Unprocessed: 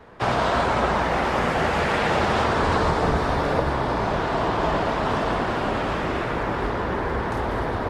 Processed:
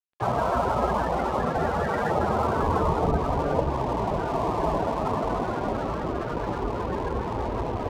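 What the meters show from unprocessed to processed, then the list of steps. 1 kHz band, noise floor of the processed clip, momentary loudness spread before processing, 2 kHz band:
-3.0 dB, -30 dBFS, 5 LU, -10.0 dB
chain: loudest bins only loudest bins 32; crossover distortion -37.5 dBFS

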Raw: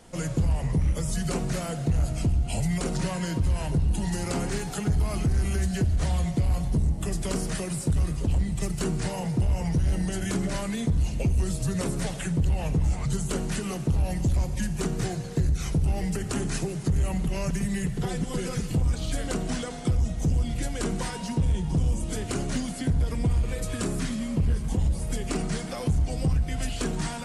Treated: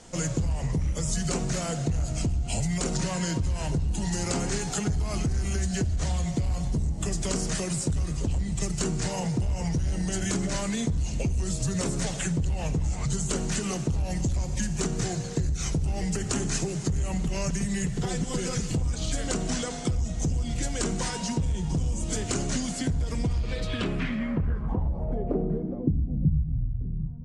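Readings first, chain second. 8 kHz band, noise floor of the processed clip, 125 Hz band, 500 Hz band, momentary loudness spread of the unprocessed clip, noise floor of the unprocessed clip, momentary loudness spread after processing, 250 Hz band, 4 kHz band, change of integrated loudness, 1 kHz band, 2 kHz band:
+4.5 dB, -33 dBFS, -2.0 dB, 0.0 dB, 4 LU, -34 dBFS, 2 LU, -0.5 dB, +2.0 dB, -1.0 dB, -0.5 dB, +0.5 dB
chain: compression, threshold -25 dBFS, peak gain reduction 5.5 dB; low-pass sweep 7 kHz -> 110 Hz, 23.15–26.68 s; trim +1.5 dB

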